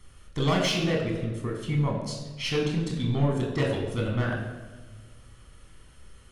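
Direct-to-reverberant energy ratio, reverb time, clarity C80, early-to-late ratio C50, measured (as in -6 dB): -1.0 dB, 1.4 s, 6.0 dB, 4.0 dB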